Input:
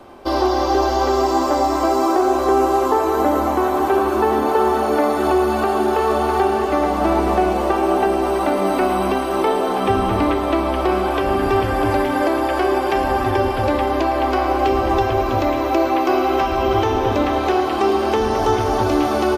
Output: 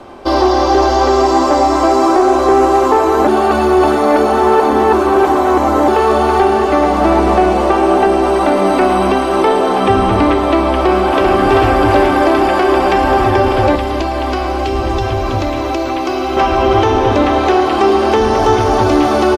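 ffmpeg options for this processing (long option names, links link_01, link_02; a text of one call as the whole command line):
ffmpeg -i in.wav -filter_complex "[0:a]asplit=2[link_01][link_02];[link_02]afade=type=in:start_time=10.73:duration=0.01,afade=type=out:start_time=11.32:duration=0.01,aecho=0:1:390|780|1170|1560|1950|2340|2730|3120|3510|3900|4290|4680:0.707946|0.601754|0.511491|0.434767|0.369552|0.314119|0.267001|0.226951|0.192909|0.163972|0.139376|0.11847[link_03];[link_01][link_03]amix=inputs=2:normalize=0,asettb=1/sr,asplit=3[link_04][link_05][link_06];[link_04]atrim=end=13.754[link_07];[link_05]atrim=start=13.75:end=16.37,asetpts=PTS-STARTPTS,afade=type=in:duration=0.004:curve=qsin,afade=type=out:start_time=2.616:duration=0.004:curve=qsin,acrossover=split=200|3000[link_08][link_09][link_10];[link_09]acompressor=threshold=-22dB:ratio=6:attack=3.2:release=140:knee=2.83:detection=peak[link_11];[link_08][link_11][link_10]amix=inputs=3:normalize=0[link_12];[link_06]atrim=start=16.366[link_13];[link_07][link_12]acrossfade=duration=0.004:curve1=hsin:curve2=qsin[link_14];[link_14][link_13]acrossfade=duration=0.004:curve1=qsin:curve2=hsin,asplit=3[link_15][link_16][link_17];[link_15]atrim=end=3.272[link_18];[link_16]atrim=start=3.268:end=5.882,asetpts=PTS-STARTPTS,areverse[link_19];[link_17]atrim=start=5.878[link_20];[link_18][link_19]acrossfade=duration=0.004:curve1=hsin:curve2=hsin[link_21];[link_21][link_20]acrossfade=duration=0.004:curve1=hsin:curve2=hsin,lowpass=9200,acontrast=53,volume=1dB" out.wav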